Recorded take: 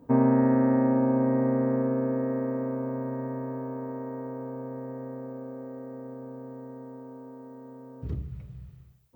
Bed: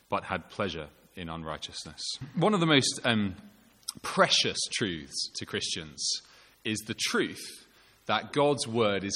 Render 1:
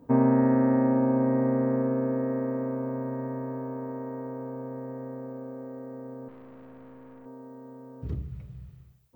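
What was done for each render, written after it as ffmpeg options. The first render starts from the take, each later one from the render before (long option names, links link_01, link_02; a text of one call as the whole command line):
ffmpeg -i in.wav -filter_complex "[0:a]asettb=1/sr,asplit=3[link_01][link_02][link_03];[link_01]atrim=end=6.284[link_04];[link_02]atrim=start=6.28:end=7.26,asetpts=PTS-STARTPTS,afade=type=in:duration=0.004:curve=qsin,afade=type=out:start_time=0.976:duration=0.004:curve=qsin,aeval=exprs='(tanh(178*val(0)+0.6)-tanh(0.6))/178':channel_layout=same[link_05];[link_03]atrim=start=7.256[link_06];[link_04][link_05]acrossfade=duration=0.004:curve1=hsin:curve2=qsin[link_07];[link_07][link_06]acrossfade=duration=0.004:curve1=qsin:curve2=hsin" out.wav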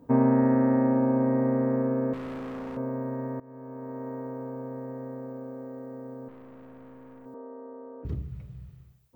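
ffmpeg -i in.wav -filter_complex "[0:a]asettb=1/sr,asplit=3[link_01][link_02][link_03];[link_01]atrim=end=2.134[link_04];[link_02]atrim=start=2.13:end=2.77,asetpts=PTS-STARTPTS,afade=type=in:duration=0.004:curve=qsin,afade=type=out:start_time=0.636:duration=0.004:curve=qsin,asoftclip=type=hard:threshold=-34.5dB[link_05];[link_03]atrim=start=2.766[link_06];[link_04][link_05]acrossfade=duration=0.004:curve1=hsin:curve2=qsin[link_07];[link_07][link_06]acrossfade=duration=0.004:curve1=qsin:curve2=hsin,asettb=1/sr,asplit=3[link_08][link_09][link_10];[link_08]atrim=end=7.344[link_11];[link_09]atrim=start=7.34:end=8.05,asetpts=PTS-STARTPTS,afade=type=in:duration=0.004:curve=qsin,afade=type=out:start_time=0.706:duration=0.004:curve=qsin,highpass=frequency=260:width=0.5412,highpass=frequency=260:width=1.3066,equalizer=frequency=320:width_type=q:width=4:gain=4,equalizer=frequency=470:width_type=q:width=4:gain=6,equalizer=frequency=680:width_type=q:width=4:gain=3,equalizer=frequency=1100:width_type=q:width=4:gain=7,lowpass=frequency=2000:width=0.5412,lowpass=frequency=2000:width=1.3066[link_12];[link_10]atrim=start=8.046[link_13];[link_11][link_12]acrossfade=duration=0.004:curve1=hsin:curve2=qsin[link_14];[link_14][link_13]acrossfade=duration=0.004:curve1=qsin:curve2=hsin,asplit=2[link_15][link_16];[link_15]atrim=end=3.4,asetpts=PTS-STARTPTS,afade=type=out:start_time=3.396:duration=0.004:curve=hsin:silence=0.1[link_17];[link_16]atrim=start=3.4,asetpts=PTS-STARTPTS,afade=type=in:duration=0.68:silence=0.1[link_18];[link_17][link_18]concat=n=2:v=0:a=1" out.wav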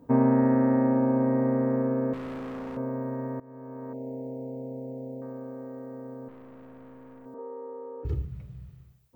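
ffmpeg -i in.wav -filter_complex "[0:a]asettb=1/sr,asplit=3[link_01][link_02][link_03];[link_01]atrim=end=3.934[link_04];[link_02]atrim=start=3.93:end=5.22,asetpts=PTS-STARTPTS,afade=type=in:duration=0.004:curve=qsin,afade=type=out:start_time=1.286:duration=0.004:curve=qsin,asuperstop=centerf=1400:order=8:qfactor=0.88[link_05];[link_03]atrim=start=5.216[link_06];[link_04][link_05]acrossfade=duration=0.004:curve1=hsin:curve2=qsin[link_07];[link_07][link_06]acrossfade=duration=0.004:curve1=qsin:curve2=hsin,asettb=1/sr,asplit=3[link_08][link_09][link_10];[link_08]atrim=end=7.384[link_11];[link_09]atrim=start=7.38:end=8.25,asetpts=PTS-STARTPTS,afade=type=in:duration=0.004:curve=qsin,afade=type=out:start_time=0.866:duration=0.004:curve=qsin,aecho=1:1:2.3:0.85,atrim=end_sample=38367[link_12];[link_10]atrim=start=8.246[link_13];[link_11][link_12]acrossfade=duration=0.004:curve1=hsin:curve2=qsin[link_14];[link_14][link_13]acrossfade=duration=0.004:curve1=qsin:curve2=hsin" out.wav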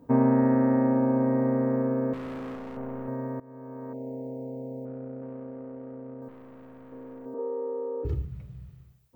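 ffmpeg -i in.wav -filter_complex "[0:a]asettb=1/sr,asplit=3[link_01][link_02][link_03];[link_01]atrim=end=2.554[link_04];[link_02]atrim=start=2.55:end=3.08,asetpts=PTS-STARTPTS,afade=type=in:duration=0.004:curve=qsin,afade=type=out:start_time=0.526:duration=0.004:curve=qsin,aeval=exprs='(tanh(31.6*val(0)+0.55)-tanh(0.55))/31.6':channel_layout=same[link_05];[link_03]atrim=start=3.076[link_06];[link_04][link_05]acrossfade=duration=0.004:curve1=hsin:curve2=qsin[link_07];[link_07][link_06]acrossfade=duration=0.004:curve1=qsin:curve2=hsin,asettb=1/sr,asplit=3[link_08][link_09][link_10];[link_08]atrim=end=4.854[link_11];[link_09]atrim=start=4.85:end=6.22,asetpts=PTS-STARTPTS,afade=type=in:duration=0.004:curve=qsin,afade=type=out:start_time=1.366:duration=0.004:curve=qsin,adynamicsmooth=sensitivity=2.5:basefreq=690[link_12];[link_10]atrim=start=6.216[link_13];[link_11][link_12]acrossfade=duration=0.004:curve1=hsin:curve2=qsin[link_14];[link_14][link_13]acrossfade=duration=0.004:curve1=qsin:curve2=hsin,asettb=1/sr,asplit=3[link_15][link_16][link_17];[link_15]atrim=end=6.924[link_18];[link_16]atrim=start=6.92:end=8.1,asetpts=PTS-STARTPTS,afade=type=in:duration=0.004:curve=qsin,afade=type=out:start_time=1.176:duration=0.004:curve=qsin,equalizer=frequency=390:width=1:gain=9[link_19];[link_17]atrim=start=8.096[link_20];[link_18][link_19]acrossfade=duration=0.004:curve1=hsin:curve2=qsin[link_21];[link_21][link_20]acrossfade=duration=0.004:curve1=qsin:curve2=hsin" out.wav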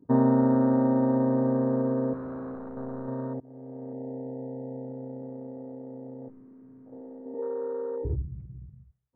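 ffmpeg -i in.wav -af "lowpass=frequency=2000:width=0.5412,lowpass=frequency=2000:width=1.3066,afwtdn=0.0126" out.wav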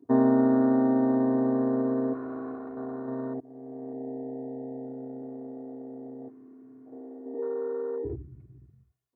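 ffmpeg -i in.wav -af "highpass=160,aecho=1:1:2.8:0.71" out.wav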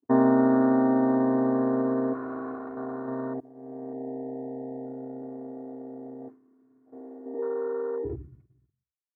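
ffmpeg -i in.wav -af "agate=range=-33dB:threshold=-41dB:ratio=3:detection=peak,equalizer=frequency=1300:width=0.71:gain=6" out.wav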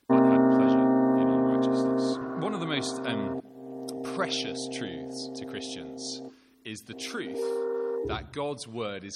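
ffmpeg -i in.wav -i bed.wav -filter_complex "[1:a]volume=-7.5dB[link_01];[0:a][link_01]amix=inputs=2:normalize=0" out.wav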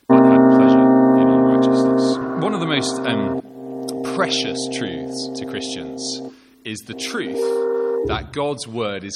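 ffmpeg -i in.wav -af "volume=10dB,alimiter=limit=-2dB:level=0:latency=1" out.wav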